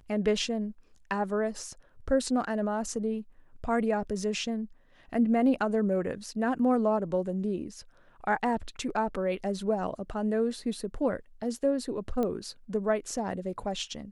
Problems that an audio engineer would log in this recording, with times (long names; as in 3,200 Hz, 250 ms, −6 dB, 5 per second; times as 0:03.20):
0:12.23: click −19 dBFS